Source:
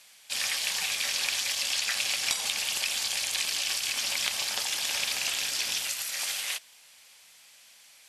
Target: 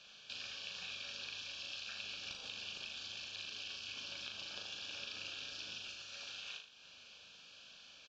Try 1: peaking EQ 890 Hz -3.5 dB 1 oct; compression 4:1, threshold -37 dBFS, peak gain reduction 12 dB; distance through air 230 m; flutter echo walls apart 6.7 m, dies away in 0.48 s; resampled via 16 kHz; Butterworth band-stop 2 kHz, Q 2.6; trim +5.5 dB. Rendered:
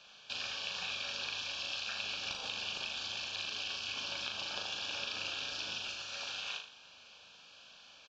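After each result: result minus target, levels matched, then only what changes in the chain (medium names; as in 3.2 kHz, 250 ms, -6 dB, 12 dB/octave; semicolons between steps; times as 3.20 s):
compression: peak gain reduction -6 dB; 1 kHz band +5.0 dB
change: compression 4:1, threshold -45.5 dBFS, peak gain reduction 18.5 dB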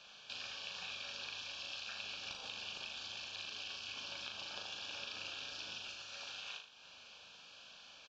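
1 kHz band +5.0 dB
change: peaking EQ 890 Hz -12 dB 1 oct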